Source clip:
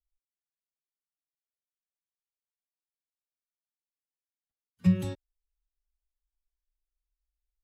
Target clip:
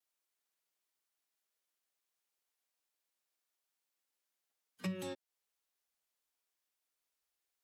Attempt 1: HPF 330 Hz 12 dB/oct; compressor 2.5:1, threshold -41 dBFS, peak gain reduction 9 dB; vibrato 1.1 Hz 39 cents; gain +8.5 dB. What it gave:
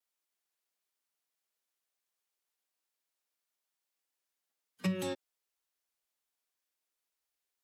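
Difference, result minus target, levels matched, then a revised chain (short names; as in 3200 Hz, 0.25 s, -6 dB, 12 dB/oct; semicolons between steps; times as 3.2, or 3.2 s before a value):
compressor: peak gain reduction -6.5 dB
HPF 330 Hz 12 dB/oct; compressor 2.5:1, threshold -51.5 dBFS, peak gain reduction 15.5 dB; vibrato 1.1 Hz 39 cents; gain +8.5 dB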